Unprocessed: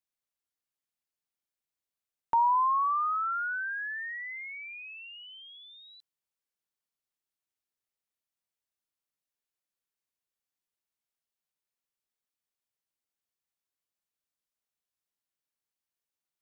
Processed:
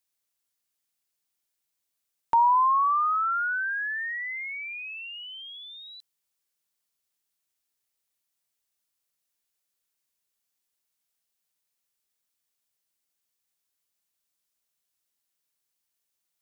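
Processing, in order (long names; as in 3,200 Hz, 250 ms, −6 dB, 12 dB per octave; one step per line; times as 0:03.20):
high-shelf EQ 3,200 Hz +8 dB
level +3.5 dB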